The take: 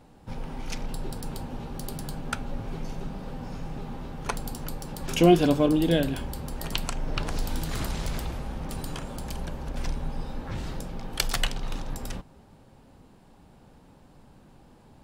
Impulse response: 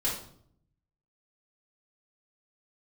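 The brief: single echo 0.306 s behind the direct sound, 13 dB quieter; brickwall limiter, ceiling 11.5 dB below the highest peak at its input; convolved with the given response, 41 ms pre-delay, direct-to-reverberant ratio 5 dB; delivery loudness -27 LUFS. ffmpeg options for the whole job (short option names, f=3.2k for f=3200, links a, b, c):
-filter_complex "[0:a]alimiter=limit=-17dB:level=0:latency=1,aecho=1:1:306:0.224,asplit=2[a][b];[1:a]atrim=start_sample=2205,adelay=41[c];[b][c]afir=irnorm=-1:irlink=0,volume=-12dB[d];[a][d]amix=inputs=2:normalize=0,volume=4.5dB"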